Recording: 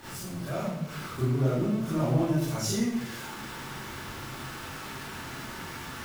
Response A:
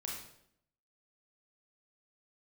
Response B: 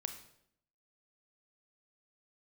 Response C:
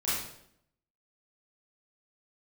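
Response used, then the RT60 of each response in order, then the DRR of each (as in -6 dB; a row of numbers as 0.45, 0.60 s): C; 0.70, 0.70, 0.70 s; -2.5, 6.5, -11.0 dB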